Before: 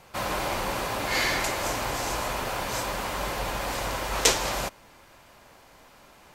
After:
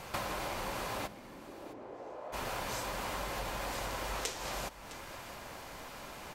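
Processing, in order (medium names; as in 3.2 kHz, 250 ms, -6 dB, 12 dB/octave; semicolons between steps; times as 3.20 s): compression 16:1, threshold -41 dBFS, peak gain reduction 26 dB; 1.06–2.32 s: band-pass filter 180 Hz -> 600 Hz, Q 2; delay 660 ms -16 dB; trim +6.5 dB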